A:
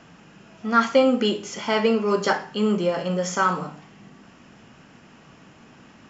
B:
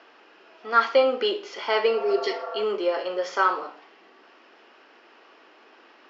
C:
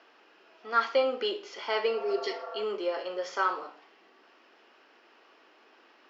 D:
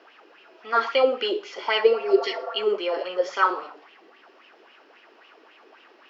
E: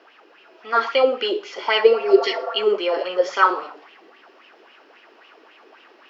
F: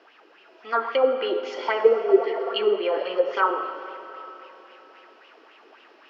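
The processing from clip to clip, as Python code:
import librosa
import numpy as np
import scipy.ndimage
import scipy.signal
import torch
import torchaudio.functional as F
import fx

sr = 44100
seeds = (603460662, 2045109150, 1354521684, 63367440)

y1 = fx.spec_repair(x, sr, seeds[0], start_s=1.96, length_s=0.65, low_hz=480.0, high_hz=1800.0, source='before')
y1 = scipy.signal.sosfilt(scipy.signal.ellip(3, 1.0, 40, [360.0, 4700.0], 'bandpass', fs=sr, output='sos'), y1)
y2 = fx.high_shelf(y1, sr, hz=5100.0, db=4.5)
y2 = y2 * 10.0 ** (-6.5 / 20.0)
y3 = fx.bell_lfo(y2, sr, hz=3.7, low_hz=340.0, high_hz=3000.0, db=12)
y3 = y3 * 10.0 ** (2.0 / 20.0)
y4 = fx.rider(y3, sr, range_db=10, speed_s=2.0)
y4 = y4 * 10.0 ** (4.0 / 20.0)
y5 = fx.env_lowpass_down(y4, sr, base_hz=1200.0, full_db=-15.0)
y5 = fx.rev_freeverb(y5, sr, rt60_s=3.6, hf_ratio=0.9, predelay_ms=45, drr_db=9.5)
y5 = y5 * 10.0 ** (-3.0 / 20.0)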